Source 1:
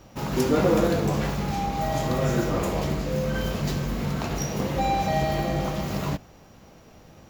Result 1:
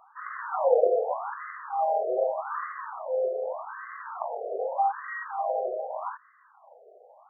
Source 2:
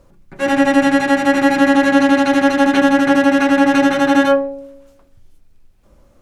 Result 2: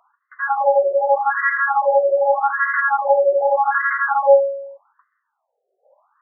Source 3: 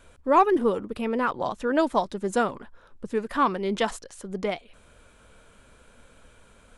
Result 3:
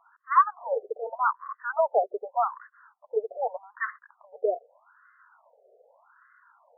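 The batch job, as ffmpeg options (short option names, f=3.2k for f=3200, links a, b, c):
-af "afftfilt=real='re*between(b*sr/1024,530*pow(1500/530,0.5+0.5*sin(2*PI*0.83*pts/sr))/1.41,530*pow(1500/530,0.5+0.5*sin(2*PI*0.83*pts/sr))*1.41)':imag='im*between(b*sr/1024,530*pow(1500/530,0.5+0.5*sin(2*PI*0.83*pts/sr))/1.41,530*pow(1500/530,0.5+0.5*sin(2*PI*0.83*pts/sr))*1.41)':win_size=1024:overlap=0.75,volume=3.5dB"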